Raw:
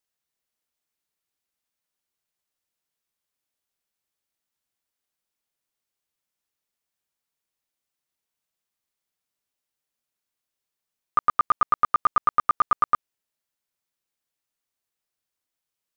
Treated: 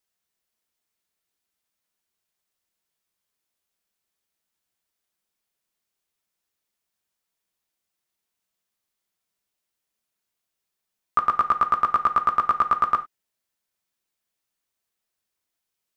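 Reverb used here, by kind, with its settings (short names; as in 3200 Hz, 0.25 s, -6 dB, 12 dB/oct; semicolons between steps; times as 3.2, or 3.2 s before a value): non-linear reverb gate 0.12 s falling, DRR 8 dB; gain +2 dB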